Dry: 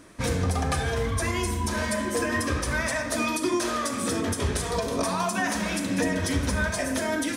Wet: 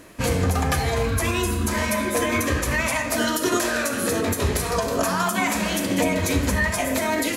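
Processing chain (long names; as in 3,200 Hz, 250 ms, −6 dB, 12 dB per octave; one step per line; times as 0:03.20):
formants moved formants +3 semitones
level +4 dB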